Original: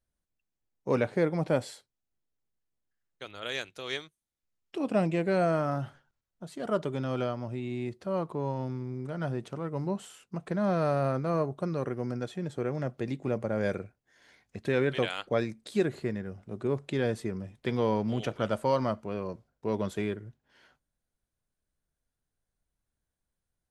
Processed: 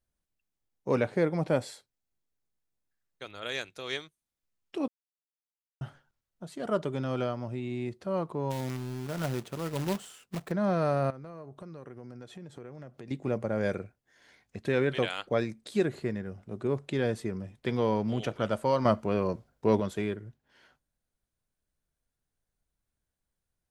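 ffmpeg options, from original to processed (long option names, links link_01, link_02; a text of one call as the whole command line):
ffmpeg -i in.wav -filter_complex "[0:a]asettb=1/sr,asplit=3[link_01][link_02][link_03];[link_01]atrim=end=1.594[link_04];[link_02]atrim=start=1.59:end=3.9,asetpts=PTS-STARTPTS,afade=type=in:duration=0.004:curve=qsin,afade=type=out:start_time=2.306:duration=0.004:curve=qsin,bandreject=frequency=3000:width=16[link_05];[link_03]atrim=start=3.896[link_06];[link_04][link_05]acrossfade=duration=0.004:curve1=hsin:curve2=qsin[link_07];[link_07][link_06]acrossfade=duration=0.004:curve1=qsin:curve2=hsin,asplit=3[link_08][link_09][link_10];[link_08]afade=type=out:start_time=8.5:duration=0.02[link_11];[link_09]acrusher=bits=2:mode=log:mix=0:aa=0.000001,afade=type=in:start_time=8.5:duration=0.02,afade=type=out:start_time=10.5:duration=0.02[link_12];[link_10]afade=type=in:start_time=10.5:duration=0.02[link_13];[link_11][link_12][link_13]amix=inputs=3:normalize=0,asettb=1/sr,asplit=3[link_14][link_15][link_16];[link_14]atrim=end=11.104[link_17];[link_15]atrim=start=11.1:end=13.11,asetpts=PTS-STARTPTS,afade=type=in:duration=0.004:curve=qsin,afade=type=out:start_time=2.006:duration=0.004:curve=qsin,acompressor=threshold=-42dB:ratio=5:attack=3.2:release=140:knee=1:detection=peak[link_18];[link_16]atrim=start=13.106[link_19];[link_17][link_18]acrossfade=duration=0.004:curve1=hsin:curve2=qsin[link_20];[link_20][link_19]acrossfade=duration=0.004:curve1=qsin:curve2=hsin,asettb=1/sr,asplit=3[link_21][link_22][link_23];[link_21]atrim=end=18.854[link_24];[link_22]atrim=start=18.85:end=19.8,asetpts=PTS-STARTPTS,afade=type=in:duration=0.004:curve=qsin,afade=type=out:start_time=0.946:duration=0.004:curve=qsin,acontrast=67[link_25];[link_23]atrim=start=19.796[link_26];[link_24][link_25]acrossfade=duration=0.004:curve1=hsin:curve2=qsin[link_27];[link_27][link_26]acrossfade=duration=0.004:curve1=qsin:curve2=hsin,asplit=3[link_28][link_29][link_30];[link_28]atrim=end=4.88,asetpts=PTS-STARTPTS,afade=type=out:start_time=4.876:duration=0.004:curve=hsin[link_31];[link_29]atrim=start=4.88:end=5.81,asetpts=PTS-STARTPTS,volume=0[link_32];[link_30]atrim=start=5.81,asetpts=PTS-STARTPTS,afade=type=in:duration=0.004:curve=hsin[link_33];[link_31][link_32][link_33]concat=n=3:v=0:a=1" out.wav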